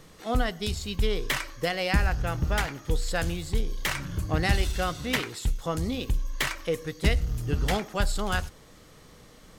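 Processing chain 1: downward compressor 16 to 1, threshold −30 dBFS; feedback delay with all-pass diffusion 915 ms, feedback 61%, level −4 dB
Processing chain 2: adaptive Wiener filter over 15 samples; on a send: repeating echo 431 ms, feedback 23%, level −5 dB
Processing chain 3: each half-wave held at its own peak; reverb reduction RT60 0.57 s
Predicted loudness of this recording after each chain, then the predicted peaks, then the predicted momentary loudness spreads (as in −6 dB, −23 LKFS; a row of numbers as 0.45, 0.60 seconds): −34.5, −28.5, −25.0 LKFS; −19.0, −9.5, −9.0 dBFS; 4, 6, 6 LU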